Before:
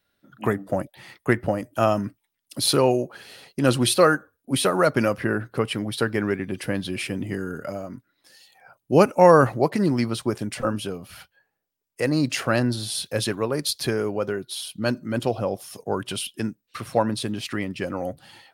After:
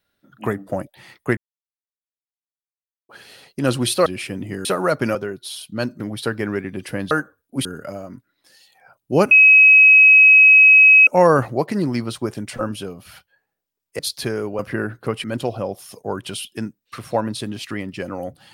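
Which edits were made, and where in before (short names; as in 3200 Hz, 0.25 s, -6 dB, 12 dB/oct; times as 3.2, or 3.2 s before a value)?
1.37–3.09 mute
4.06–4.6 swap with 6.86–7.45
5.1–5.75 swap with 14.21–15.06
9.11 add tone 2550 Hz -6 dBFS 1.76 s
12.03–13.61 cut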